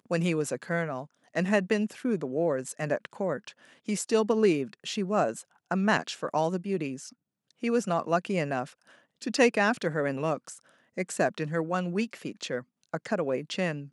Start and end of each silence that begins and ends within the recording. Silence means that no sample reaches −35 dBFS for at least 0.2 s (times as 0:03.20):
0:01.03–0:01.35
0:03.49–0:03.88
0:05.41–0:05.71
0:07.08–0:07.63
0:08.65–0:09.22
0:10.53–0:10.98
0:12.60–0:12.94